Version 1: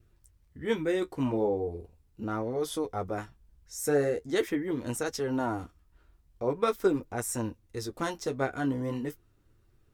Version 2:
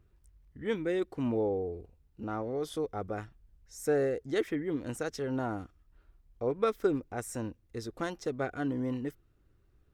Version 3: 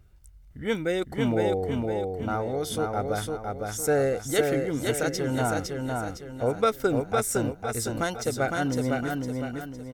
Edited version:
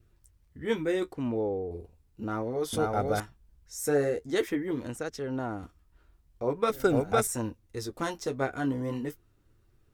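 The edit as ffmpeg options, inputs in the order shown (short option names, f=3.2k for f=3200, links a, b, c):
-filter_complex "[1:a]asplit=2[a][b];[2:a]asplit=2[c][d];[0:a]asplit=5[e][f][g][h][i];[e]atrim=end=1.132[j];[a]atrim=start=1.128:end=1.712[k];[f]atrim=start=1.708:end=2.732[l];[c]atrim=start=2.728:end=3.202[m];[g]atrim=start=3.198:end=4.872[n];[b]atrim=start=4.868:end=5.632[o];[h]atrim=start=5.628:end=6.702[p];[d]atrim=start=6.698:end=7.272[q];[i]atrim=start=7.268[r];[j][k]acrossfade=d=0.004:c1=hsin:c2=hsin[s];[s][l]acrossfade=d=0.004:c1=hsin:c2=hsin[t];[t][m]acrossfade=d=0.004:c1=hsin:c2=hsin[u];[u][n]acrossfade=d=0.004:c1=hsin:c2=hsin[v];[v][o]acrossfade=d=0.004:c1=hsin:c2=hsin[w];[w][p]acrossfade=d=0.004:c1=hsin:c2=hsin[x];[x][q]acrossfade=d=0.004:c1=hsin:c2=hsin[y];[y][r]acrossfade=d=0.004:c1=hsin:c2=hsin"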